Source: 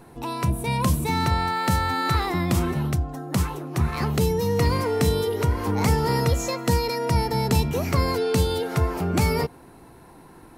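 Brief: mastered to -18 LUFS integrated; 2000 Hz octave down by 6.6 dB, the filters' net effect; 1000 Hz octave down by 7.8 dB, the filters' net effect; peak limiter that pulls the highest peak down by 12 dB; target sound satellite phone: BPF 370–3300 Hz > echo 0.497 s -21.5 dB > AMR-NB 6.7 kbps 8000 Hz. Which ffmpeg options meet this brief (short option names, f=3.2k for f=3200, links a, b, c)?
-af "equalizer=f=1k:t=o:g=-8,equalizer=f=2k:t=o:g=-5,alimiter=limit=-22dB:level=0:latency=1,highpass=370,lowpass=3.3k,aecho=1:1:497:0.0841,volume=19.5dB" -ar 8000 -c:a libopencore_amrnb -b:a 6700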